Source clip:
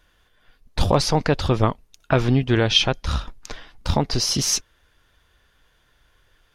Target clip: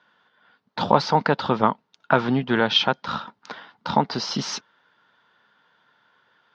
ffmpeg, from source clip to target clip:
-af "highpass=f=160:w=0.5412,highpass=f=160:w=1.3066,equalizer=f=210:t=q:w=4:g=4,equalizer=f=330:t=q:w=4:g=-4,equalizer=f=910:t=q:w=4:g=9,equalizer=f=1.4k:t=q:w=4:g=7,equalizer=f=2.5k:t=q:w=4:g=-4,lowpass=f=4.5k:w=0.5412,lowpass=f=4.5k:w=1.3066,volume=-1dB"

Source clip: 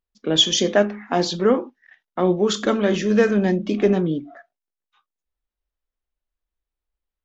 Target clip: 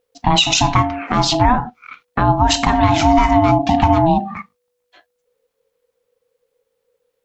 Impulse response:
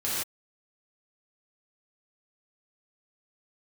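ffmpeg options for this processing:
-af "acompressor=threshold=-26dB:ratio=3,aeval=exprs='val(0)*sin(2*PI*490*n/s)':c=same,alimiter=level_in=18.5dB:limit=-1dB:release=50:level=0:latency=1,volume=-1dB"

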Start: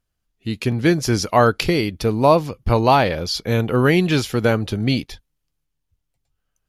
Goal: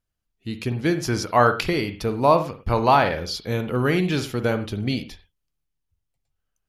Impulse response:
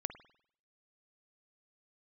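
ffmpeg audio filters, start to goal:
-filter_complex "[0:a]asplit=3[a][b][c];[a]afade=t=out:st=0.98:d=0.02[d];[b]adynamicequalizer=threshold=0.0501:dfrequency=1300:dqfactor=0.8:tfrequency=1300:tqfactor=0.8:attack=5:release=100:ratio=0.375:range=3:mode=boostabove:tftype=bell,afade=t=in:st=0.98:d=0.02,afade=t=out:st=3.2:d=0.02[e];[c]afade=t=in:st=3.2:d=0.02[f];[d][e][f]amix=inputs=3:normalize=0[g];[1:a]atrim=start_sample=2205,afade=t=out:st=0.19:d=0.01,atrim=end_sample=8820[h];[g][h]afir=irnorm=-1:irlink=0,volume=-4.5dB"

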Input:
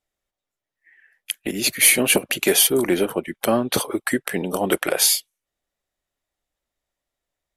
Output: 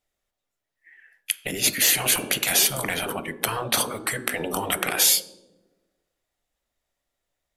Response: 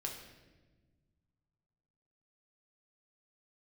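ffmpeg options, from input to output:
-filter_complex "[0:a]asplit=2[a][b];[1:a]atrim=start_sample=2205,asetrate=74970,aresample=44100[c];[b][c]afir=irnorm=-1:irlink=0,volume=-7dB[d];[a][d]amix=inputs=2:normalize=0,afftfilt=real='re*lt(hypot(re,im),0.316)':imag='im*lt(hypot(re,im),0.316)':win_size=1024:overlap=0.75,bandreject=f=59.34:t=h:w=4,bandreject=f=118.68:t=h:w=4,bandreject=f=178.02:t=h:w=4,bandreject=f=237.36:t=h:w=4,bandreject=f=296.7:t=h:w=4,bandreject=f=356.04:t=h:w=4,bandreject=f=415.38:t=h:w=4,bandreject=f=474.72:t=h:w=4,bandreject=f=534.06:t=h:w=4,bandreject=f=593.4:t=h:w=4,bandreject=f=652.74:t=h:w=4,bandreject=f=712.08:t=h:w=4,bandreject=f=771.42:t=h:w=4,bandreject=f=830.76:t=h:w=4,bandreject=f=890.1:t=h:w=4,bandreject=f=949.44:t=h:w=4,bandreject=f=1.00878k:t=h:w=4,bandreject=f=1.06812k:t=h:w=4,bandreject=f=1.12746k:t=h:w=4,bandreject=f=1.1868k:t=h:w=4,bandreject=f=1.24614k:t=h:w=4,bandreject=f=1.30548k:t=h:w=4,bandreject=f=1.36482k:t=h:w=4,bandreject=f=1.42416k:t=h:w=4,bandreject=f=1.4835k:t=h:w=4,bandreject=f=1.54284k:t=h:w=4,bandreject=f=1.60218k:t=h:w=4,bandreject=f=1.66152k:t=h:w=4,bandreject=f=1.72086k:t=h:w=4,volume=1dB"

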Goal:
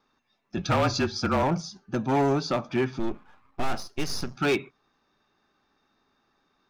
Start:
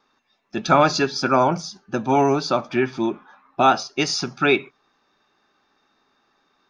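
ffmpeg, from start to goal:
-filter_complex "[0:a]asettb=1/sr,asplit=3[a][b][c];[a]atrim=end=2.994[d];[b]atrim=start=2.99:end=4.36,asetpts=PTS-STARTPTS,afade=t=in:d=0.004:c=qsin,afade=t=out:st=1.366:d=0.004:c=qsin,aeval=exprs='if(lt(val(0),0),0.251*val(0),val(0))':c=same[e];[c]atrim=start=4.356[f];[d][e]acrossfade=d=0.004:c1=hsin:c2=qsin[g];[g][f]acrossfade=d=0.004:c1=qsin:c2=hsin,lowshelf=f=190:g=10.5,asplit=3[h][i][j];[h]afade=t=out:st=0.56:d=0.02[k];[i]afreqshift=-36,afade=t=in:st=0.56:d=0.02,afade=t=out:st=1.42:d=0.02[l];[j]afade=t=in:st=1.42:d=0.02[m];[k][l][m]amix=inputs=3:normalize=0,asoftclip=type=hard:threshold=-13dB,volume=-6dB"

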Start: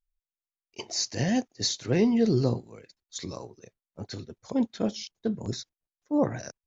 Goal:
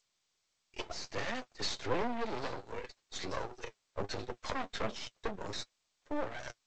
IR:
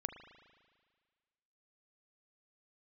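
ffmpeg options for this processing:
-filter_complex "[0:a]dynaudnorm=f=200:g=13:m=16.5dB,asoftclip=type=tanh:threshold=-17dB,flanger=delay=8.1:depth=2.6:regen=38:speed=1.4:shape=sinusoidal,alimiter=limit=-22dB:level=0:latency=1:release=452,acrossover=split=140[a][b];[b]acompressor=threshold=-50dB:ratio=1.5[c];[a][c]amix=inputs=2:normalize=0,asettb=1/sr,asplit=3[d][e][f];[d]atrim=end=1.254[g];[e]atrim=start=1.25:end=4.02,asetpts=PTS-STARTPTS,afade=t=in:d=0.004:c=qsin,afade=t=out:st=2.766:d=0.004:c=qsin,adynamicequalizer=threshold=0.00631:dfrequency=290:dqfactor=1.1:tfrequency=290:tqfactor=1.1:attack=5:release=100:ratio=0.375:range=2:mode=cutabove:tftype=bell[h];[f]atrim=start=4.016[i];[g][h]acrossfade=d=0.004:c1=hsin:c2=qsin[j];[j][i]acrossfade=d=0.004:c1=qsin:c2=hsin,acrossover=split=800[k][l];[k]aeval=exprs='val(0)*(1-0.5/2+0.5/2*cos(2*PI*1*n/s))':c=same[m];[l]aeval=exprs='val(0)*(1-0.5/2-0.5/2*cos(2*PI*1*n/s))':c=same[n];[m][n]amix=inputs=2:normalize=0,highpass=f=96:p=1,acrossover=split=390 3900:gain=0.1 1 0.158[o][p][q];[o][p][q]amix=inputs=3:normalize=0,aeval=exprs='max(val(0),0)':c=same,volume=15dB" -ar 16000 -c:a g722

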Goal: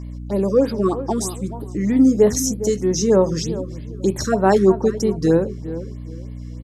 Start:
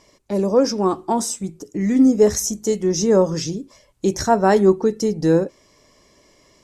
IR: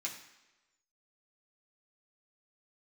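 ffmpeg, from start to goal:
-filter_complex "[0:a]aeval=exprs='val(0)+0.0316*(sin(2*PI*60*n/s)+sin(2*PI*2*60*n/s)/2+sin(2*PI*3*60*n/s)/3+sin(2*PI*4*60*n/s)/4+sin(2*PI*5*60*n/s)/5)':c=same,asplit=2[a][b];[b]adelay=409,lowpass=f=1.4k:p=1,volume=-13dB,asplit=2[c][d];[d]adelay=409,lowpass=f=1.4k:p=1,volume=0.27,asplit=2[e][f];[f]adelay=409,lowpass=f=1.4k:p=1,volume=0.27[g];[a][c][e][g]amix=inputs=4:normalize=0,afftfilt=real='re*(1-between(b*sr/1024,700*pow(7100/700,0.5+0.5*sin(2*PI*3.2*pts/sr))/1.41,700*pow(7100/700,0.5+0.5*sin(2*PI*3.2*pts/sr))*1.41))':imag='im*(1-between(b*sr/1024,700*pow(7100/700,0.5+0.5*sin(2*PI*3.2*pts/sr))/1.41,700*pow(7100/700,0.5+0.5*sin(2*PI*3.2*pts/sr))*1.41))':win_size=1024:overlap=0.75"

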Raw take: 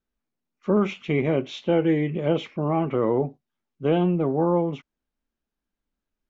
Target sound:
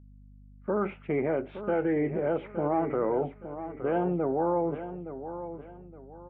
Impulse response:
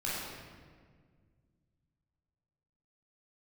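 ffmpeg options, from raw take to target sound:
-filter_complex "[0:a]lowpass=f=1.5k:w=0.5412,lowpass=f=1.5k:w=1.3066,agate=range=-11dB:threshold=-47dB:ratio=16:detection=peak,highpass=f=630:p=1,equalizer=f=1.1k:w=4.8:g=-11,acrossover=split=920[a][b];[a]alimiter=level_in=2.5dB:limit=-24dB:level=0:latency=1:release=63,volume=-2.5dB[c];[c][b]amix=inputs=2:normalize=0,aeval=exprs='val(0)+0.00158*(sin(2*PI*50*n/s)+sin(2*PI*2*50*n/s)/2+sin(2*PI*3*50*n/s)/3+sin(2*PI*4*50*n/s)/4+sin(2*PI*5*50*n/s)/5)':c=same,aecho=1:1:867|1734|2601:0.282|0.0874|0.0271,volume=5.5dB"

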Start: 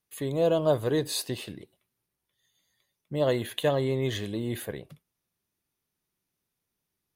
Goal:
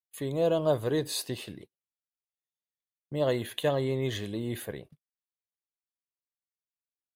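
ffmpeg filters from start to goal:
-af "agate=range=-29dB:threshold=-45dB:ratio=16:detection=peak,volume=-2dB"

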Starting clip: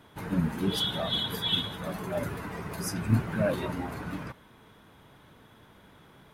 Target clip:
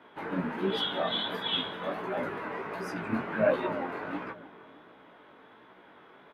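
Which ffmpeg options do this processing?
-filter_complex "[0:a]acrossover=split=250 3200:gain=0.0708 1 0.0708[a][b][c];[a][b][c]amix=inputs=3:normalize=0,asplit=2[d][e];[e]adelay=306,lowpass=f=1.1k:p=1,volume=-14dB,asplit=2[f][g];[g]adelay=306,lowpass=f=1.1k:p=1,volume=0.48,asplit=2[h][i];[i]adelay=306,lowpass=f=1.1k:p=1,volume=0.48,asplit=2[j][k];[k]adelay=306,lowpass=f=1.1k:p=1,volume=0.48,asplit=2[l][m];[m]adelay=306,lowpass=f=1.1k:p=1,volume=0.48[n];[d][f][h][j][l][n]amix=inputs=6:normalize=0,flanger=delay=15.5:depth=6.8:speed=1.4,volume=6.5dB"

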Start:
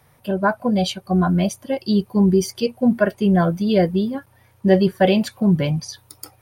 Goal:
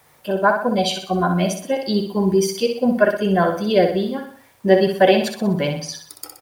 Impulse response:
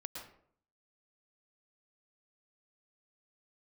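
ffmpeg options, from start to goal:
-filter_complex "[0:a]bass=f=250:g=-11,treble=f=4k:g=-1,acrusher=bits=9:mix=0:aa=0.000001,asplit=2[a][b];[b]aecho=0:1:62|124|186|248|310:0.473|0.213|0.0958|0.0431|0.0194[c];[a][c]amix=inputs=2:normalize=0,volume=3dB"

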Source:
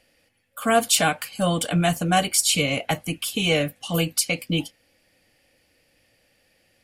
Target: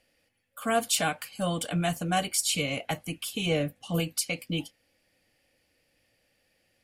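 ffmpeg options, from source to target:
-filter_complex "[0:a]asettb=1/sr,asplit=3[a][b][c];[a]atrim=end=3.464[d];[b]atrim=start=3.46:end=4,asetpts=PTS-STARTPTS,afade=t=in:d=0.004:c=qsin,afade=t=out:st=0.536:d=0.004:c=qsin,tiltshelf=f=860:g=4[e];[c]atrim=start=3.996[f];[d][e]acrossfade=d=0.004:c1=hsin:c2=qsin[g];[g][f]acrossfade=d=0.004:c1=qsin:c2=hsin,volume=-7dB"

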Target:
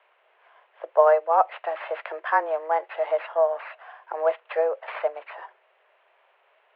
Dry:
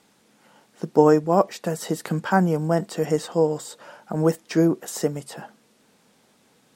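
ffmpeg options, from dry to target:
-af "acrusher=samples=7:mix=1:aa=0.000001,highpass=f=370:t=q:w=0.5412,highpass=f=370:t=q:w=1.307,lowpass=f=2.8k:t=q:w=0.5176,lowpass=f=2.8k:t=q:w=0.7071,lowpass=f=2.8k:t=q:w=1.932,afreqshift=160"

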